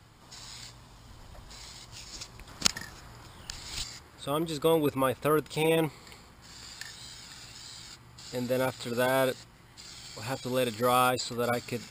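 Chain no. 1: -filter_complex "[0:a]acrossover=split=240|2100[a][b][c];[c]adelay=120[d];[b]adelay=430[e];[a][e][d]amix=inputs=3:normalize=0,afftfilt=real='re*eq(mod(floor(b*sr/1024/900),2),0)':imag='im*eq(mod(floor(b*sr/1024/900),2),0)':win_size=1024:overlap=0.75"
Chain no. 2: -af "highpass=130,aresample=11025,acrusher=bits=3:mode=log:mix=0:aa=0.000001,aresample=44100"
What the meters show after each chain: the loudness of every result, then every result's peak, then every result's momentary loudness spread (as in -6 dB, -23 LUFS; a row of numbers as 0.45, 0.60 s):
-32.0, -29.5 LUFS; -10.5, -9.0 dBFS; 20, 20 LU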